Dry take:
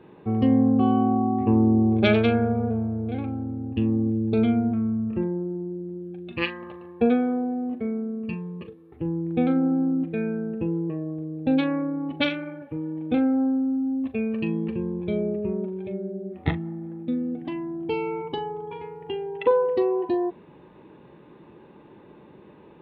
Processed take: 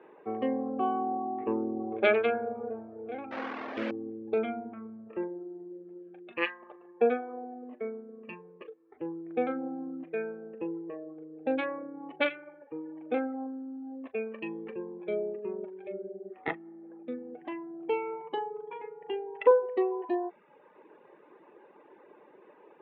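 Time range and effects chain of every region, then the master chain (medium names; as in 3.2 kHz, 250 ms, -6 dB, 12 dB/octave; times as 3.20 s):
3.31–3.91 s: one-bit delta coder 32 kbps, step -25.5 dBFS + doubling 49 ms -5 dB + loudspeaker Doppler distortion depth 0.37 ms
whole clip: reverb removal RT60 0.85 s; Chebyshev band-pass 450–2100 Hz, order 2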